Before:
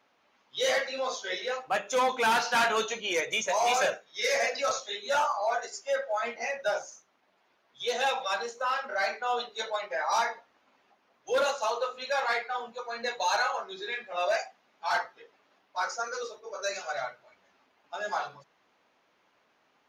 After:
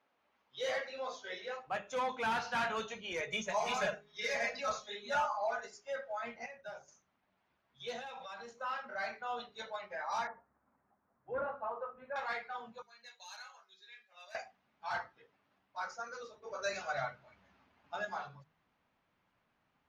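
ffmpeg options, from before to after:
-filter_complex "[0:a]asettb=1/sr,asplit=3[a][b][c];[a]atrim=end=3.204[d];[b]atrim=start=3.2:end=5.74,asetpts=PTS-STARTPTS,afade=t=in:d=0.004:c=qsin,afade=t=out:st=2.536:d=0.004:c=qsin,aecho=1:1:4.8:0.99,atrim=end_sample=112014[e];[c]atrim=start=5.736[f];[d][e]acrossfade=d=0.004:c1=hsin:c2=qsin[g];[g][f]acrossfade=d=0.004:c1=qsin:c2=hsin,asettb=1/sr,asplit=3[h][i][j];[h]atrim=end=7.994[k];[i]atrim=start=7.99:end=8.57,asetpts=PTS-STARTPTS,afade=t=in:d=0.004:c=qsin,afade=t=out:st=0.576:d=0.004:c=qsin,acompressor=threshold=-33dB:ratio=6:attack=3.2:release=140:knee=1:detection=peak[l];[j]atrim=start=8.566[m];[k][l]acrossfade=d=0.004:c1=hsin:c2=qsin[n];[n][m]acrossfade=d=0.004:c1=qsin:c2=hsin,asettb=1/sr,asplit=3[o][p][q];[o]atrim=end=10.274[r];[p]atrim=start=10.27:end=12.16,asetpts=PTS-STARTPTS,afade=t=in:d=0.004:c=qsin,afade=t=out:st=1.886:d=0.004:c=qsin,lowpass=f=1.6k:w=0.5412,lowpass=f=1.6k:w=1.3066[s];[q]atrim=start=12.156[t];[r][s]acrossfade=d=0.004:c1=hsin:c2=qsin[u];[u][t]acrossfade=d=0.004:c1=qsin:c2=hsin,asettb=1/sr,asplit=3[v][w][x];[v]atrim=end=12.824[y];[w]atrim=start=12.82:end=14.35,asetpts=PTS-STARTPTS,afade=t=in:d=0.004:c=qsin,afade=t=out:st=1.526:d=0.004:c=qsin,aderivative[z];[x]atrim=start=14.346[aa];[y][z]acrossfade=d=0.004:c1=hsin:c2=qsin[ab];[ab][aa]acrossfade=d=0.004:c1=qsin:c2=hsin,asettb=1/sr,asplit=3[ac][ad][ae];[ac]atrim=end=16.424[af];[ad]atrim=start=16.42:end=18.05,asetpts=PTS-STARTPTS,afade=t=in:d=0.004:c=qsin,afade=t=out:st=1.626:d=0.004:c=qsin,acontrast=71[ag];[ae]atrim=start=18.046[ah];[af][ag]acrossfade=d=0.004:c1=hsin:c2=qsin[ai];[ai][ah]acrossfade=d=0.004:c1=qsin:c2=hsin,asplit=3[aj][ak][al];[aj]atrim=end=6.462[am];[ak]atrim=start=6.458:end=6.882,asetpts=PTS-STARTPTS,volume=-7.5dB[an];[al]atrim=start=6.878[ao];[am][an]acrossfade=d=0.004:c1=hsin:c2=hsin[ap];[ap][ao]acrossfade=d=0.004:c1=hsin:c2=hsin,lowpass=f=2.6k:p=1,bandreject=f=51.74:t=h:w=4,bandreject=f=103.48:t=h:w=4,bandreject=f=155.22:t=h:w=4,bandreject=f=206.96:t=h:w=4,bandreject=f=258.7:t=h:w=4,bandreject=f=310.44:t=h:w=4,bandreject=f=362.18:t=h:w=4,bandreject=f=413.92:t=h:w=4,asubboost=boost=7:cutoff=150,volume=-7.5dB"

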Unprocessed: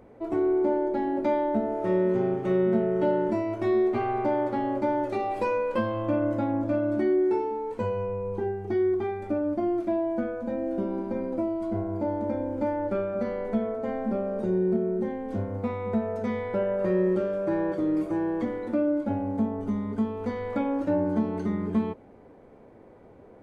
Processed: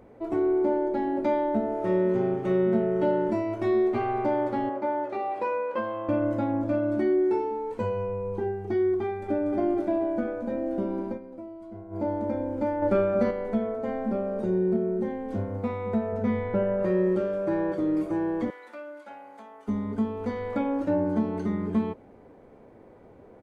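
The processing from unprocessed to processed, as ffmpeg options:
-filter_complex "[0:a]asettb=1/sr,asplit=3[a][b][c];[a]atrim=end=4.694[d];[b]atrim=start=4.69:end=6.09,asetpts=PTS-STARTPTS,afade=t=in:d=0.004:c=qsin,afade=t=out:st=1.396:d=0.004:c=qsin,bandpass=f=1k:t=q:w=0.57[e];[c]atrim=start=6.086[f];[d][e]acrossfade=d=0.004:c1=hsin:c2=qsin[g];[g][f]acrossfade=d=0.004:c1=qsin:c2=hsin,asplit=2[h][i];[i]afade=t=in:st=9.04:d=0.01,afade=t=out:st=9.5:d=0.01,aecho=0:1:240|480|720|960|1200|1440|1680|1920|2160|2400|2640|2880:0.562341|0.393639|0.275547|0.192883|0.135018|0.0945127|0.0661589|0.0463112|0.0324179|0.0226925|0.0158848|0.0111193[j];[h][j]amix=inputs=2:normalize=0,asettb=1/sr,asplit=3[k][l][m];[k]atrim=end=12.824[n];[l]atrim=start=12.82:end=13.31,asetpts=PTS-STARTPTS,afade=t=in:d=0.004:c=qsin,afade=t=out:st=0.486:d=0.004:c=qsin,acontrast=35[o];[m]atrim=start=13.306[p];[n][o]acrossfade=d=0.004:c1=hsin:c2=qsin[q];[q][p]acrossfade=d=0.004:c1=qsin:c2=hsin,asettb=1/sr,asplit=3[r][s][t];[r]atrim=end=16.124[u];[s]atrim=start=16.12:end=16.83,asetpts=PTS-STARTPTS,afade=t=in:d=0.004:c=qsin,afade=t=out:st=0.706:d=0.004:c=qsin,bass=f=250:g=7,treble=f=4k:g=-10[v];[t]atrim=start=16.826[w];[u][v]acrossfade=d=0.004:c1=hsin:c2=qsin[x];[x][w]acrossfade=d=0.004:c1=qsin:c2=hsin,asettb=1/sr,asplit=3[y][z][aa];[y]atrim=end=18.504[ab];[z]atrim=start=18.5:end=19.68,asetpts=PTS-STARTPTS,afade=t=in:d=0.004:c=qsin,afade=t=out:st=1.176:d=0.004:c=qsin,highpass=1.2k[ac];[aa]atrim=start=19.676[ad];[ab][ac]acrossfade=d=0.004:c1=hsin:c2=qsin[ae];[ae][ad]acrossfade=d=0.004:c1=qsin:c2=hsin,asplit=3[af][ag][ah];[af]atrim=end=11.19,asetpts=PTS-STARTPTS,afade=t=out:st=11.06:d=0.13:c=qsin:silence=0.237137[ai];[ag]atrim=start=11.19:end=11.9,asetpts=PTS-STARTPTS,volume=-12.5dB[aj];[ah]atrim=start=11.9,asetpts=PTS-STARTPTS,afade=t=in:d=0.13:c=qsin:silence=0.237137[ak];[ai][aj][ak]concat=n=3:v=0:a=1"

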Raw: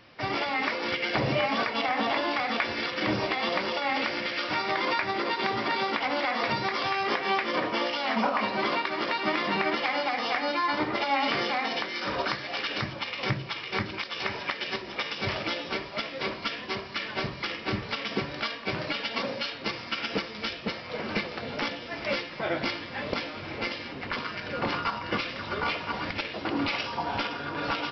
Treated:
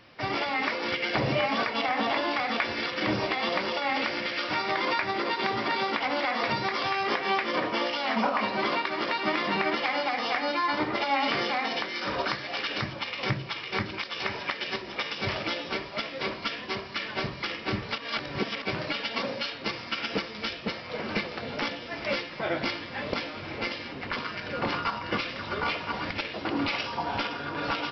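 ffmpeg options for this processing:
-filter_complex "[0:a]asplit=3[a][b][c];[a]atrim=end=17.982[d];[b]atrim=start=17.978:end=18.622,asetpts=PTS-STARTPTS,areverse[e];[c]atrim=start=18.618[f];[d][e]acrossfade=d=0.004:c1=hsin:c2=hsin[g];[g][f]acrossfade=d=0.004:c1=hsin:c2=hsin"

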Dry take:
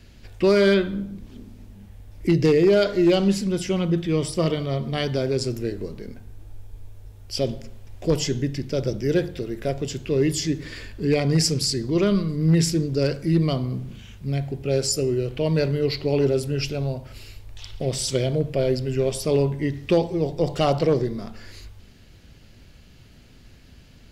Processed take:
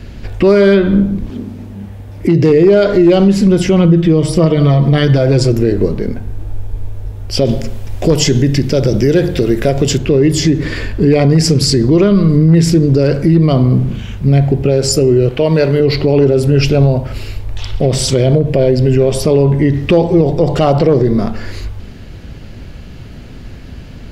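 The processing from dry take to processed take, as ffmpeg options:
-filter_complex "[0:a]asettb=1/sr,asplit=3[a][b][c];[a]atrim=end=1.304[d];[b]atrim=start=1.3:end=2.5,asetpts=PTS-STARTPTS,afade=t=in:d=0.004:c=qsin,afade=t=out:st=1.196:d=0.004:c=qsin,highpass=88[e];[c]atrim=start=2.496[f];[d][e]acrossfade=d=0.004:c1=hsin:c2=qsin[g];[g][f]acrossfade=d=0.004:c1=qsin:c2=hsin,asettb=1/sr,asplit=3[h][i][j];[h]atrim=end=3.844[k];[i]atrim=start=3.84:end=5.52,asetpts=PTS-STARTPTS,afade=t=in:d=0.004:c=qsin,afade=t=out:st=1.676:d=0.004:c=qsin,aecho=1:1:6.2:0.69,atrim=end_sample=74088[l];[j]atrim=start=5.516[m];[k][l]acrossfade=d=0.004:c1=hsin:c2=qsin[n];[n][m]acrossfade=d=0.004:c1=qsin:c2=hsin,asettb=1/sr,asplit=3[o][p][q];[o]atrim=end=7.454[r];[p]atrim=start=7.45:end=9.98,asetpts=PTS-STARTPTS,afade=t=in:d=0.004:c=qsin,afade=t=out:st=2.526:d=0.004:c=qsin,highshelf=f=3k:g=9[s];[q]atrim=start=9.976[t];[r][s]acrossfade=d=0.004:c1=hsin:c2=qsin[u];[u][t]acrossfade=d=0.004:c1=qsin:c2=hsin,asettb=1/sr,asplit=3[v][w][x];[v]atrim=end=15.294[y];[w]atrim=start=15.29:end=15.8,asetpts=PTS-STARTPTS,afade=t=in:d=0.004:c=qsin,afade=t=out:st=0.506:d=0.004:c=qsin,lowshelf=f=320:g=-10.5[z];[x]atrim=start=15.796[aa];[y][z]acrossfade=d=0.004:c1=hsin:c2=qsin[ab];[ab][aa]acrossfade=d=0.004:c1=qsin:c2=hsin,asettb=1/sr,asplit=3[ac][ad][ae];[ac]atrim=end=18.464[af];[ad]atrim=start=18.46:end=18.98,asetpts=PTS-STARTPTS,afade=t=in:d=0.004:c=qsin,afade=t=out:st=0.516:d=0.004:c=qsin,bandreject=f=1.3k:w=6.2[ag];[ae]atrim=start=18.976[ah];[af][ag]acrossfade=d=0.004:c1=hsin:c2=qsin[ai];[ai][ah]acrossfade=d=0.004:c1=qsin:c2=hsin,highshelf=f=2.5k:g=-11,acompressor=threshold=-22dB:ratio=6,alimiter=level_in=20dB:limit=-1dB:release=50:level=0:latency=1,volume=-1dB"

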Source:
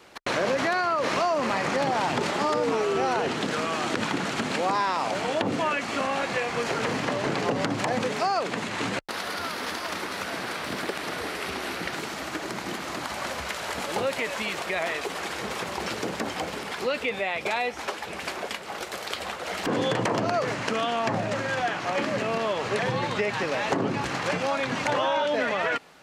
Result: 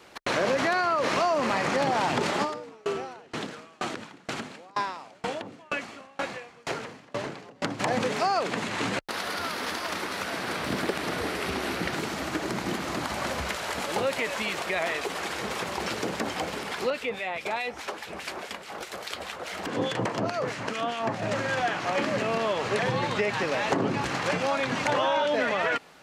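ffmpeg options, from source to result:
-filter_complex "[0:a]asplit=3[a][b][c];[a]afade=t=out:st=2.43:d=0.02[d];[b]aeval=exprs='val(0)*pow(10,-31*if(lt(mod(2.1*n/s,1),2*abs(2.1)/1000),1-mod(2.1*n/s,1)/(2*abs(2.1)/1000),(mod(2.1*n/s,1)-2*abs(2.1)/1000)/(1-2*abs(2.1)/1000))/20)':c=same,afade=t=in:st=2.43:d=0.02,afade=t=out:st=7.79:d=0.02[e];[c]afade=t=in:st=7.79:d=0.02[f];[d][e][f]amix=inputs=3:normalize=0,asettb=1/sr,asplit=3[g][h][i];[g]atrim=end=10.474[j];[h]atrim=start=10.47:end=13.56,asetpts=PTS-STARTPTS,afade=t=in:d=0.004:c=qsin,afade=t=out:st=3.086:d=0.004:c=qsin,lowshelf=f=390:g=6.5[k];[i]atrim=start=13.556[l];[j][k]acrossfade=d=0.004:c1=hsin:c2=qsin[m];[m][l]acrossfade=d=0.004:c1=qsin:c2=hsin,asettb=1/sr,asplit=3[n][o][p];[n]atrim=end=16.904[q];[o]atrim=start=16.9:end=21.22,asetpts=PTS-STARTPTS,afade=t=in:d=0.004:c=qsin,afade=t=out:st=4.316:d=0.004:c=qsin,acrossover=split=1500[r][s];[r]aeval=exprs='val(0)*(1-0.7/2+0.7/2*cos(2*PI*4.8*n/s))':c=same[t];[s]aeval=exprs='val(0)*(1-0.7/2-0.7/2*cos(2*PI*4.8*n/s))':c=same[u];[t][u]amix=inputs=2:normalize=0[v];[p]atrim=start=21.216[w];[q][v]acrossfade=d=0.004:c1=hsin:c2=qsin[x];[x][w]acrossfade=d=0.004:c1=qsin:c2=hsin"

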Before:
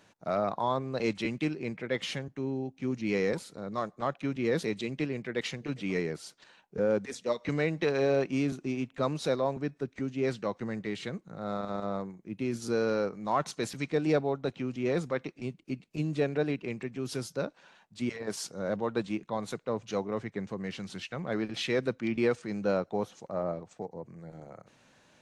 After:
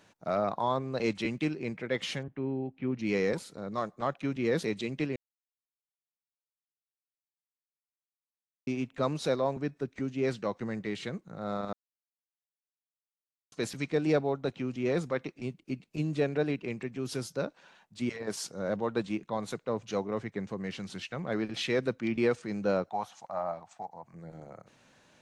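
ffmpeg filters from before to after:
-filter_complex "[0:a]asettb=1/sr,asplit=3[a][b][c];[a]atrim=end=2.234[d];[b]atrim=start=2.23:end=2.99,asetpts=PTS-STARTPTS,afade=t=in:d=0.004:c=qsin,afade=t=out:st=0.756:d=0.004:c=qsin,lowpass=f=3.1k:w=0.5412,lowpass=f=3.1k:w=1.3066[e];[c]atrim=start=2.986[f];[d][e]acrossfade=d=0.004:c1=hsin:c2=qsin[g];[g][f]acrossfade=d=0.004:c1=qsin:c2=hsin,asettb=1/sr,asplit=3[h][i][j];[h]atrim=end=22.894[k];[i]atrim=start=22.89:end=24.14,asetpts=PTS-STARTPTS,afade=t=in:d=0.004:c=qsin,afade=t=out:st=1.246:d=0.004:c=qsin,lowshelf=f=580:t=q:w=3:g=-9[l];[j]atrim=start=24.136[m];[k][l]acrossfade=d=0.004:c1=hsin:c2=qsin[n];[n][m]acrossfade=d=0.004:c1=qsin:c2=hsin,asplit=5[o][p][q][r][s];[o]atrim=end=5.16,asetpts=PTS-STARTPTS,afade=t=out:st=5.156:d=0.004:c=hsin[t];[p]atrim=start=5.16:end=8.67,asetpts=PTS-STARTPTS,volume=0[u];[q]atrim=start=8.67:end=11.73,asetpts=PTS-STARTPTS,afade=t=in:d=0.004:c=hsin,afade=t=out:st=3.056:d=0.004:c=hsin[v];[r]atrim=start=11.73:end=13.52,asetpts=PTS-STARTPTS,volume=0[w];[s]atrim=start=13.52,asetpts=PTS-STARTPTS,afade=t=in:d=0.004:c=hsin[x];[t][u][v][w][x]concat=n=5:v=0:a=1"

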